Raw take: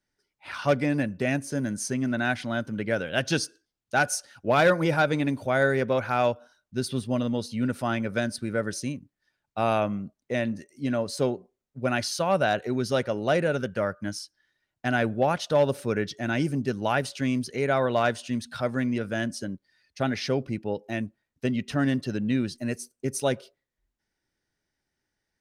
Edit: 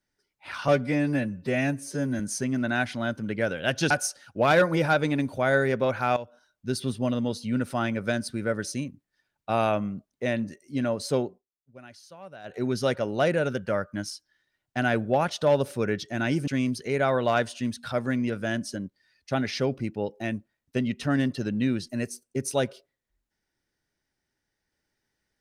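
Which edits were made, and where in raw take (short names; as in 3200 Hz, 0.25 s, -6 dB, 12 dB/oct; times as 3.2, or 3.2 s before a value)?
0.68–1.69 stretch 1.5×
3.4–3.99 cut
6.25–6.8 fade in equal-power, from -15.5 dB
11.34–12.71 dip -21 dB, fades 0.19 s
16.56–17.16 cut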